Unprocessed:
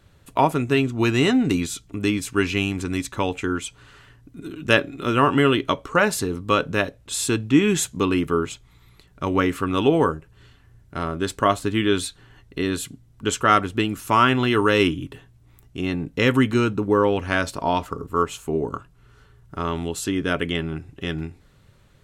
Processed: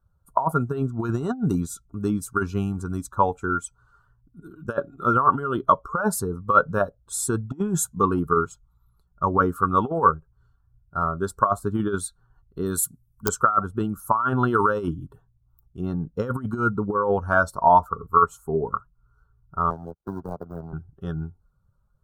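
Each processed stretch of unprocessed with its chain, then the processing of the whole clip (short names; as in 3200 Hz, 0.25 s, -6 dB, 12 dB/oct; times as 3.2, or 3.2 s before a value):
12.66–13.29 high shelf 4800 Hz +12 dB + wrapped overs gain 8.5 dB
19.7–20.73 median filter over 41 samples + power-law curve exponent 2 + three-band squash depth 70%
whole clip: per-bin expansion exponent 1.5; negative-ratio compressor -24 dBFS, ratio -0.5; EQ curve 110 Hz 0 dB, 200 Hz +5 dB, 290 Hz -3 dB, 430 Hz +3 dB, 720 Hz +8 dB, 1400 Hz +14 dB, 2000 Hz -26 dB, 10000 Hz +3 dB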